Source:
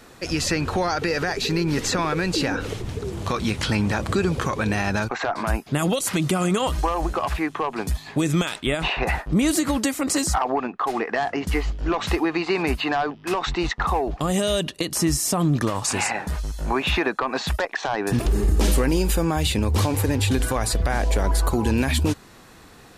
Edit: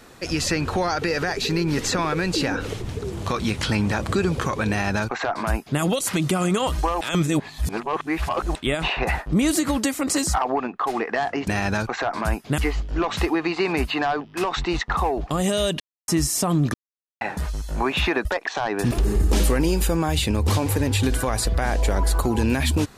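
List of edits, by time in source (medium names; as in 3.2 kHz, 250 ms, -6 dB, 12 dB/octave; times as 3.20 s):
4.70–5.80 s: copy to 11.48 s
7.01–8.55 s: reverse
14.70–14.98 s: mute
15.64–16.11 s: mute
17.15–17.53 s: delete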